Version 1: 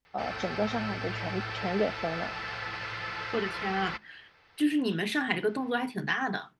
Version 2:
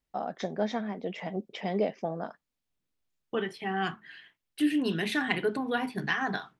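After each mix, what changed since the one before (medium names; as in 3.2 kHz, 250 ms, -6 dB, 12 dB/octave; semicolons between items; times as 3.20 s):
background: muted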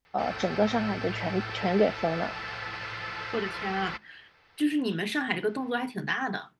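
first voice +5.0 dB; background: unmuted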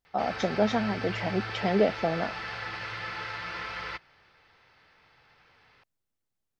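second voice: muted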